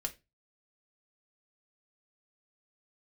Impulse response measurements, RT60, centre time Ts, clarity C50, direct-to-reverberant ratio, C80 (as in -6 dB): 0.25 s, 6 ms, 17.5 dB, 3.0 dB, 25.0 dB